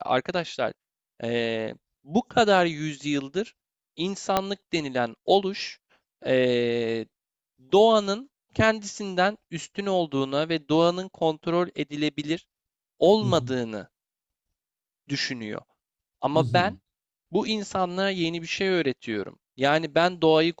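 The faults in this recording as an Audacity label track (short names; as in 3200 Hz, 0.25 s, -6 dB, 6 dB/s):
4.370000	4.370000	pop -7 dBFS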